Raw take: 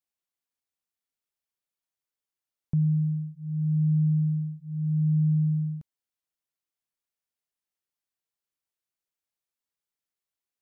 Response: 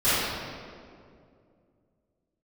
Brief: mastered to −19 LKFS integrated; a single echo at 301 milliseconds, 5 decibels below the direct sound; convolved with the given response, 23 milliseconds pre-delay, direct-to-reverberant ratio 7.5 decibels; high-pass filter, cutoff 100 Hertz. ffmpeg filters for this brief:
-filter_complex "[0:a]highpass=100,aecho=1:1:301:0.562,asplit=2[link_01][link_02];[1:a]atrim=start_sample=2205,adelay=23[link_03];[link_02][link_03]afir=irnorm=-1:irlink=0,volume=-25.5dB[link_04];[link_01][link_04]amix=inputs=2:normalize=0,volume=14dB"

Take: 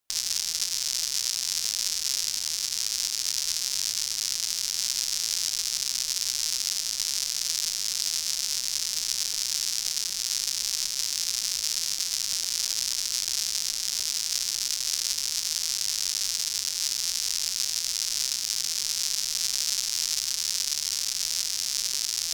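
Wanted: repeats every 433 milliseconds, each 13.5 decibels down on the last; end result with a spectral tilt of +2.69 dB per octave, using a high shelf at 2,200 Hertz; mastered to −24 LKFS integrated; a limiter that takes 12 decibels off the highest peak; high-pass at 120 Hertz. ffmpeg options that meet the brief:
ffmpeg -i in.wav -af "highpass=120,highshelf=frequency=2200:gain=3.5,alimiter=limit=-16dB:level=0:latency=1,aecho=1:1:433|866:0.211|0.0444,volume=6.5dB" out.wav

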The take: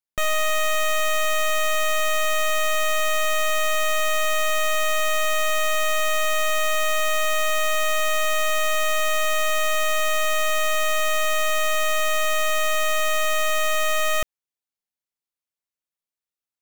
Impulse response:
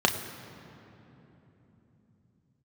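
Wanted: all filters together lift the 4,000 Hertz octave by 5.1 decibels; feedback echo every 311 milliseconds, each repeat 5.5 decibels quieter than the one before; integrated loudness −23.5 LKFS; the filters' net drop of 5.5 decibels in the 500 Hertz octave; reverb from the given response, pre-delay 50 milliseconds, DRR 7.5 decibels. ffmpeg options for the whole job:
-filter_complex "[0:a]equalizer=frequency=500:width_type=o:gain=-8,equalizer=frequency=4000:width_type=o:gain=7,aecho=1:1:311|622|933|1244|1555|1866|2177:0.531|0.281|0.149|0.079|0.0419|0.0222|0.0118,asplit=2[link_01][link_02];[1:a]atrim=start_sample=2205,adelay=50[link_03];[link_02][link_03]afir=irnorm=-1:irlink=0,volume=-21.5dB[link_04];[link_01][link_04]amix=inputs=2:normalize=0,volume=-4dB"

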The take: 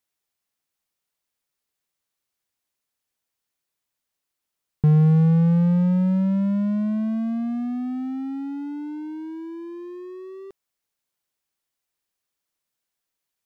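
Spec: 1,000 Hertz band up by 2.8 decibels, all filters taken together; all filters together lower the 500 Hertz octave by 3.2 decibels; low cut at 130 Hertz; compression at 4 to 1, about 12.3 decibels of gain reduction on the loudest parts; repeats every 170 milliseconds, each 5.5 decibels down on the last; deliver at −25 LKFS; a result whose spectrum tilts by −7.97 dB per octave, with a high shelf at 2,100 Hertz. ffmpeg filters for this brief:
ffmpeg -i in.wav -af "highpass=130,equalizer=frequency=500:width_type=o:gain=-5,equalizer=frequency=1000:width_type=o:gain=7,highshelf=frequency=2100:gain=-8,acompressor=threshold=-32dB:ratio=4,aecho=1:1:170|340|510|680|850|1020|1190:0.531|0.281|0.149|0.079|0.0419|0.0222|0.0118,volume=7dB" out.wav

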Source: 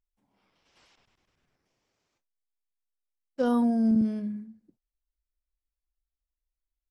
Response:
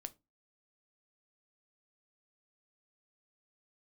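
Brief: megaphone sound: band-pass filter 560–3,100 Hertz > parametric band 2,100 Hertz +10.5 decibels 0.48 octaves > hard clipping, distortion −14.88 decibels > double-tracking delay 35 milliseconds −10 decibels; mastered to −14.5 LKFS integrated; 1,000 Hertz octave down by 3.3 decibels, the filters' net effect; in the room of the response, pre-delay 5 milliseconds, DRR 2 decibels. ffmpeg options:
-filter_complex "[0:a]equalizer=frequency=1000:width_type=o:gain=-4,asplit=2[link_01][link_02];[1:a]atrim=start_sample=2205,adelay=5[link_03];[link_02][link_03]afir=irnorm=-1:irlink=0,volume=2.5dB[link_04];[link_01][link_04]amix=inputs=2:normalize=0,highpass=560,lowpass=3100,equalizer=frequency=2100:width_type=o:width=0.48:gain=10.5,asoftclip=type=hard:threshold=-28dB,asplit=2[link_05][link_06];[link_06]adelay=35,volume=-10dB[link_07];[link_05][link_07]amix=inputs=2:normalize=0,volume=22dB"

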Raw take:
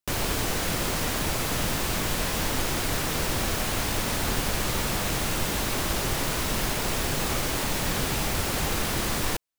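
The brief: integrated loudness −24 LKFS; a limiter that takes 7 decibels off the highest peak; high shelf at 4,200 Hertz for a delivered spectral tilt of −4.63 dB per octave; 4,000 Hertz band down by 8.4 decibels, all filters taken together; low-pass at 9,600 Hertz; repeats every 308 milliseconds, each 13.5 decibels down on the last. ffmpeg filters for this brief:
ffmpeg -i in.wav -af "lowpass=9600,equalizer=frequency=4000:width_type=o:gain=-7,highshelf=frequency=4200:gain=-7,alimiter=limit=-22.5dB:level=0:latency=1,aecho=1:1:308|616:0.211|0.0444,volume=8.5dB" out.wav

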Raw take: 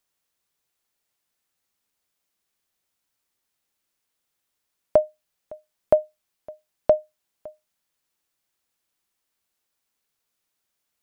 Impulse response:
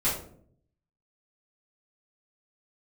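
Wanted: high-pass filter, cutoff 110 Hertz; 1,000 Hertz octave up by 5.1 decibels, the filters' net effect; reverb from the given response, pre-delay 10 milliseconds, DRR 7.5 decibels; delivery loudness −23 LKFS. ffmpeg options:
-filter_complex "[0:a]highpass=110,equalizer=frequency=1000:width_type=o:gain=8,asplit=2[link_01][link_02];[1:a]atrim=start_sample=2205,adelay=10[link_03];[link_02][link_03]afir=irnorm=-1:irlink=0,volume=-18dB[link_04];[link_01][link_04]amix=inputs=2:normalize=0,volume=-2dB"

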